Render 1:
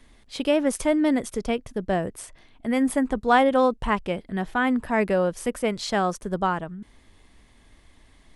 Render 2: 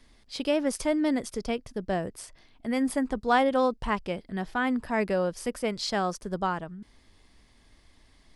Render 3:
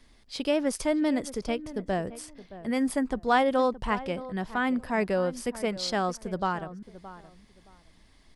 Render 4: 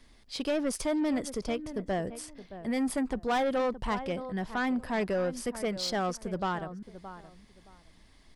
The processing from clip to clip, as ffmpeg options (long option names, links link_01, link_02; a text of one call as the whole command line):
ffmpeg -i in.wav -af "equalizer=frequency=4900:width=3.1:gain=8.5,volume=-4.5dB" out.wav
ffmpeg -i in.wav -filter_complex "[0:a]asplit=2[link_01][link_02];[link_02]adelay=620,lowpass=frequency=1500:poles=1,volume=-15dB,asplit=2[link_03][link_04];[link_04]adelay=620,lowpass=frequency=1500:poles=1,volume=0.23[link_05];[link_01][link_03][link_05]amix=inputs=3:normalize=0" out.wav
ffmpeg -i in.wav -af "asoftclip=type=tanh:threshold=-23.5dB" out.wav